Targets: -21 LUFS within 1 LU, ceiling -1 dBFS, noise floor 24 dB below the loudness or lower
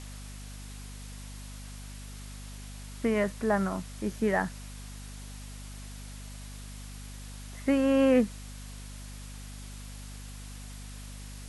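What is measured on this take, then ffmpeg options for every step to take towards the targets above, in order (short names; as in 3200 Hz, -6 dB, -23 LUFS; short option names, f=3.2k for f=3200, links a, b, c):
hum 50 Hz; harmonics up to 250 Hz; hum level -41 dBFS; noise floor -43 dBFS; noise floor target -52 dBFS; loudness -28.0 LUFS; peak -13.5 dBFS; loudness target -21.0 LUFS
-> -af "bandreject=f=50:t=h:w=6,bandreject=f=100:t=h:w=6,bandreject=f=150:t=h:w=6,bandreject=f=200:t=h:w=6,bandreject=f=250:t=h:w=6"
-af "afftdn=nr=9:nf=-43"
-af "volume=7dB"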